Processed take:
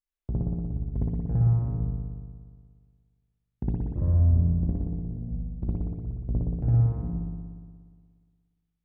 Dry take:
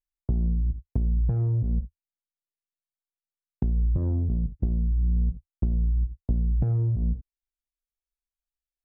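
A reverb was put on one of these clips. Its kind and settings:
spring reverb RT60 1.8 s, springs 59 ms, chirp 40 ms, DRR −9 dB
level −6.5 dB

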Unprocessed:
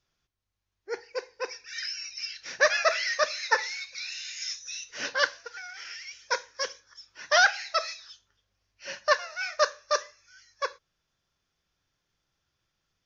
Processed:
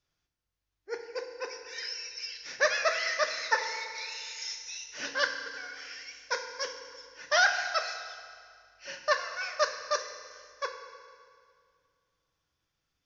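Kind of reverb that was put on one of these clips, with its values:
feedback delay network reverb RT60 2.2 s, low-frequency decay 1.3×, high-frequency decay 0.85×, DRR 5 dB
level −4 dB

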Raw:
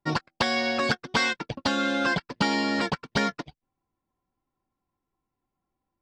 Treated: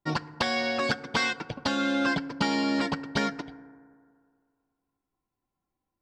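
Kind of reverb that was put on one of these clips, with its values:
feedback delay network reverb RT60 2.1 s, low-frequency decay 0.9×, high-frequency decay 0.3×, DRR 15 dB
level −2.5 dB

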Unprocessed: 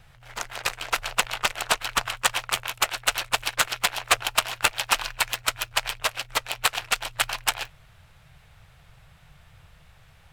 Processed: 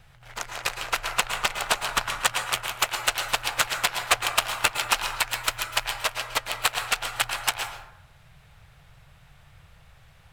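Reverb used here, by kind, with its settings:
dense smooth reverb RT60 0.8 s, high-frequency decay 0.45×, pre-delay 100 ms, DRR 6 dB
level −1 dB

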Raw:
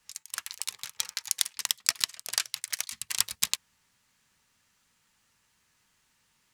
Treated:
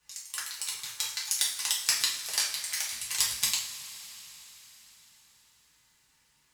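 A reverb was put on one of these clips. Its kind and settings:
coupled-rooms reverb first 0.42 s, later 4.5 s, from −18 dB, DRR −5 dB
level −5 dB

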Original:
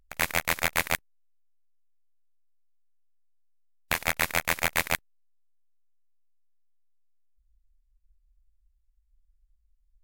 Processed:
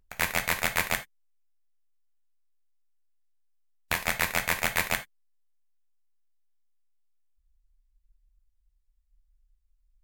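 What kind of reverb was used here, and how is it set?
reverb whose tail is shaped and stops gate 110 ms falling, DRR 6 dB
level −1.5 dB

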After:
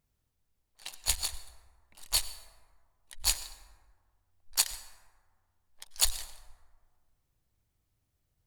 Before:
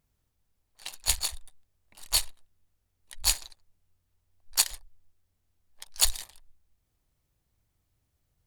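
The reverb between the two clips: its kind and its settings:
dense smooth reverb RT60 1.7 s, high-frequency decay 0.4×, pre-delay 80 ms, DRR 13 dB
level −3 dB

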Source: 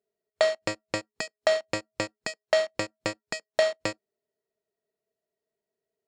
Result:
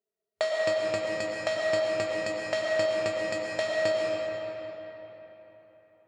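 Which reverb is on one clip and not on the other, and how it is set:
comb and all-pass reverb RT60 4 s, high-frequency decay 0.65×, pre-delay 70 ms, DRR −3.5 dB
level −6 dB

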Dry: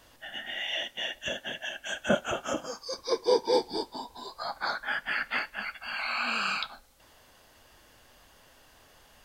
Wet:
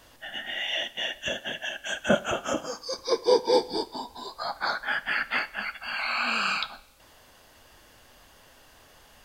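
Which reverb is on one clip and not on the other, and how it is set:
four-comb reverb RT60 0.86 s, combs from 28 ms, DRR 19.5 dB
level +3 dB

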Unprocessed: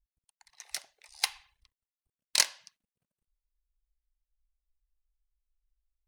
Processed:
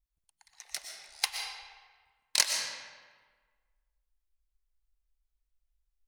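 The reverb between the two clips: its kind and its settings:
comb and all-pass reverb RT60 1.5 s, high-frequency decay 0.7×, pre-delay 80 ms, DRR 2.5 dB
level −1 dB

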